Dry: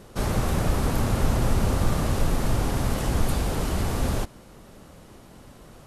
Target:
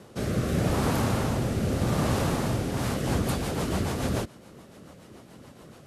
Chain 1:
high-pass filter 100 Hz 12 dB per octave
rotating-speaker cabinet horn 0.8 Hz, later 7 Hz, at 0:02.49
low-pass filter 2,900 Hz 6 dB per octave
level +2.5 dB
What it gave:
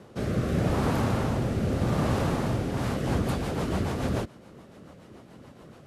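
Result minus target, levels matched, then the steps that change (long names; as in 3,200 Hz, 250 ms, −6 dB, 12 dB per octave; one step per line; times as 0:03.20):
8,000 Hz band −6.5 dB
change: low-pass filter 9,600 Hz 6 dB per octave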